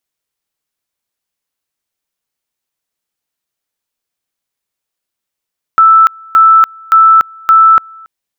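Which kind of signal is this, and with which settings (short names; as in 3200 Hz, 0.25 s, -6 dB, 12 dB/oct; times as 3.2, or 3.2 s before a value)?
two-level tone 1320 Hz -2 dBFS, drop 28.5 dB, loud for 0.29 s, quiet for 0.28 s, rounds 4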